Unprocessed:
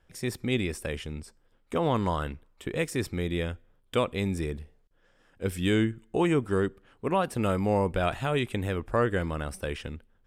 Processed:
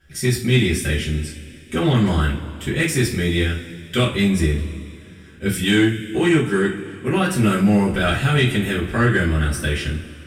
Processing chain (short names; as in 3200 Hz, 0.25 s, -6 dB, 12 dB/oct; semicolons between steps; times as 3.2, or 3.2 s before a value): band shelf 710 Hz -10.5 dB; two-slope reverb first 0.31 s, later 2.8 s, from -21 dB, DRR -8 dB; in parallel at -6 dB: soft clip -21 dBFS, distortion -10 dB; 5.64–7.09 on the sum: low shelf 170 Hz -7 dB; gain +2 dB